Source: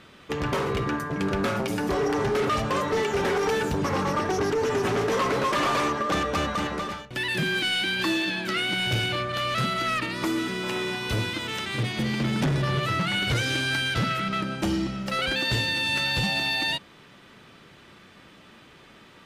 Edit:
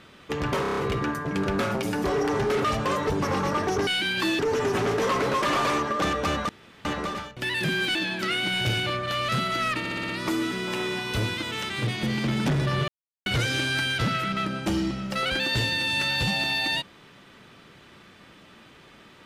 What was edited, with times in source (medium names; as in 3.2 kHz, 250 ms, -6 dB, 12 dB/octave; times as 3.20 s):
0.62 s: stutter 0.03 s, 6 plays
2.95–3.72 s: delete
6.59 s: insert room tone 0.36 s
7.69–8.21 s: move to 4.49 s
10.05 s: stutter 0.06 s, 6 plays
12.84–13.22 s: mute